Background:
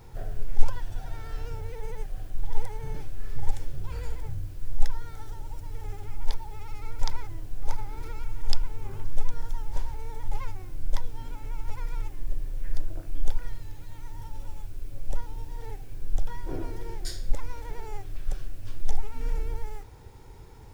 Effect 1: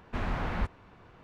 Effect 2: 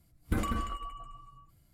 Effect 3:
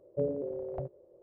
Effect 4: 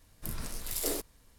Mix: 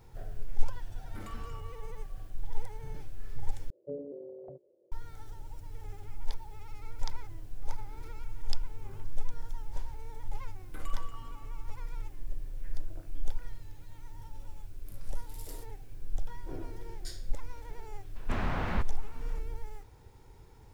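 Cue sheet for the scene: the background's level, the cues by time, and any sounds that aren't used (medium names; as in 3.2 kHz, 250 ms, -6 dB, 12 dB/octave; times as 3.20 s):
background -7 dB
0.83 s: add 2 -10.5 dB + saturation -29 dBFS
3.70 s: replace with 3 -6 dB + band-pass filter 330 Hz, Q 1.1
10.42 s: add 2 -11 dB + high-pass 450 Hz
14.63 s: add 4 -17 dB
18.16 s: add 1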